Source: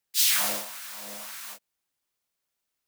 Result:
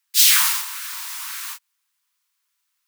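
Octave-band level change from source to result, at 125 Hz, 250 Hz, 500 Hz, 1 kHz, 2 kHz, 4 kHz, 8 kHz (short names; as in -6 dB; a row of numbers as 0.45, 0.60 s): n/a, under -40 dB, under -25 dB, +6.0 dB, +8.5 dB, +8.5 dB, +8.5 dB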